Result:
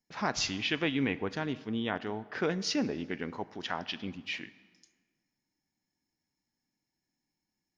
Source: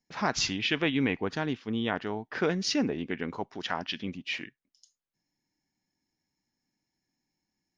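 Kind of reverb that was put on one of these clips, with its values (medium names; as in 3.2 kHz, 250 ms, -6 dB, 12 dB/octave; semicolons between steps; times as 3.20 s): plate-style reverb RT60 1.7 s, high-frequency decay 0.7×, DRR 16 dB; trim -3 dB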